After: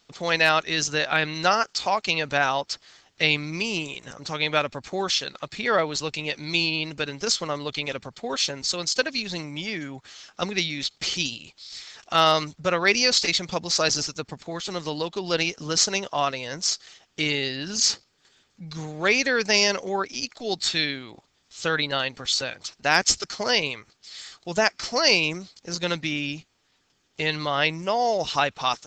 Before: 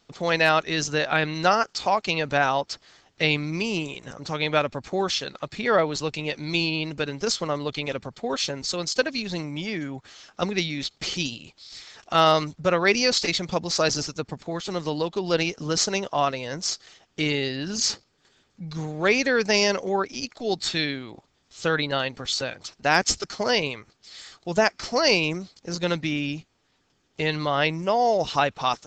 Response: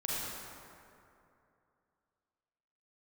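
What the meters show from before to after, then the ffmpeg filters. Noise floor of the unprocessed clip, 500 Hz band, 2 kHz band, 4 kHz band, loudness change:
-67 dBFS, -2.5 dB, +1.5 dB, +3.0 dB, +0.5 dB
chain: -af "tiltshelf=f=1.3k:g=-3.5"

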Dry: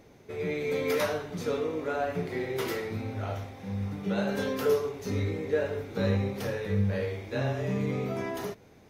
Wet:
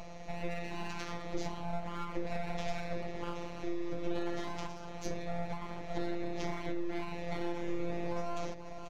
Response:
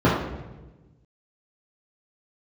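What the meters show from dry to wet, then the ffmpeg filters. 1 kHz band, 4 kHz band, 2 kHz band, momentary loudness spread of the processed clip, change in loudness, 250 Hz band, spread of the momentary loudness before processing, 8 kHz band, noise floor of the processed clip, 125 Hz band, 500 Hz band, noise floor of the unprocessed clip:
-3.0 dB, -6.0 dB, -8.0 dB, 4 LU, -9.0 dB, -6.5 dB, 7 LU, -6.0 dB, -44 dBFS, -12.0 dB, -10.5 dB, -55 dBFS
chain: -filter_complex "[0:a]superequalizer=6b=2.24:10b=0.251,asplit=2[a][b];[b]aecho=0:1:488:0.1[c];[a][c]amix=inputs=2:normalize=0,acompressor=threshold=-31dB:ratio=4,highpass=97,acrossover=split=130[d][e];[e]acompressor=threshold=-51dB:ratio=2[f];[d][f]amix=inputs=2:normalize=0,equalizer=f=280:w=1.5:g=2.5,afftfilt=real='hypot(re,im)*cos(PI*b)':imag='0':win_size=1024:overlap=0.75,aresample=16000,aresample=44100,aeval=exprs='abs(val(0))':c=same,volume=11.5dB"

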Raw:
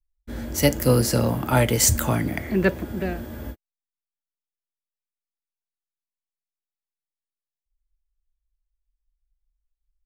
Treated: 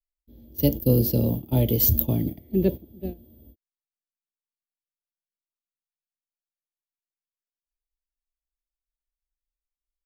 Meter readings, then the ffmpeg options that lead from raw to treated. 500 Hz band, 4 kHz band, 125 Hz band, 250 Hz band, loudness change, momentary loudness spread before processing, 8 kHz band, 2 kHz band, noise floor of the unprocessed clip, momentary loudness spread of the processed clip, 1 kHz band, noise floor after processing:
-3.5 dB, -9.5 dB, -0.5 dB, -0.5 dB, -1.0 dB, 18 LU, -16.5 dB, -22.0 dB, under -85 dBFS, 17 LU, -15.5 dB, under -85 dBFS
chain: -af "agate=range=-17dB:threshold=-24dB:ratio=16:detection=peak,firequalizer=gain_entry='entry(360,0);entry(1400,-30);entry(3300,-5);entry(9000,-25);entry(13000,8)':delay=0.05:min_phase=1"

